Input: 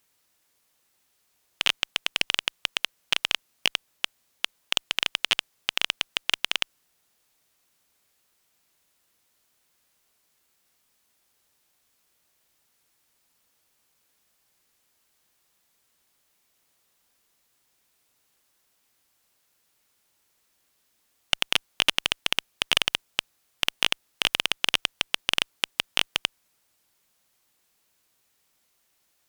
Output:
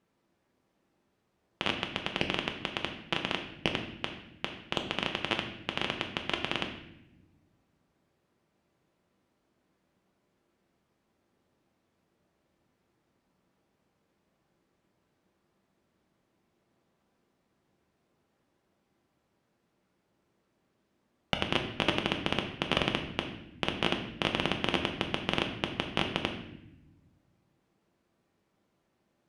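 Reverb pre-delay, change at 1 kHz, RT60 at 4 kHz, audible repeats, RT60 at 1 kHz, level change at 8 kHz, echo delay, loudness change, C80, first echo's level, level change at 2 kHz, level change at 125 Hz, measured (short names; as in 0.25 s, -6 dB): 5 ms, +0.5 dB, 0.70 s, none, 0.70 s, -17.0 dB, none, -6.5 dB, 10.0 dB, none, -6.0 dB, +9.5 dB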